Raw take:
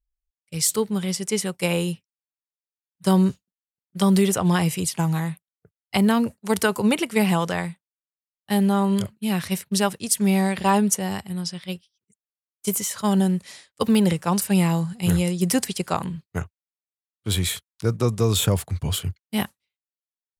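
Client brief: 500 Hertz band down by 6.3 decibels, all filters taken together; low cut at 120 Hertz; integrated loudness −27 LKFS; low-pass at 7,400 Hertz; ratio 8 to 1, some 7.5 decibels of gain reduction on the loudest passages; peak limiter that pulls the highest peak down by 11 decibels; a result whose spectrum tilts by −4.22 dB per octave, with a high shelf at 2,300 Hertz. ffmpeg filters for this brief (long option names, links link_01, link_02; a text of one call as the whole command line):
ffmpeg -i in.wav -af "highpass=120,lowpass=7400,equalizer=frequency=500:width_type=o:gain=-8.5,highshelf=frequency=2300:gain=6,acompressor=threshold=-23dB:ratio=8,volume=4dB,alimiter=limit=-16.5dB:level=0:latency=1" out.wav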